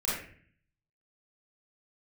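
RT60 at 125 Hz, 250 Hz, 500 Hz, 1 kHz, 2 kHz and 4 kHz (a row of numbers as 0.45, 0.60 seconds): 0.90, 0.80, 0.55, 0.45, 0.60, 0.40 seconds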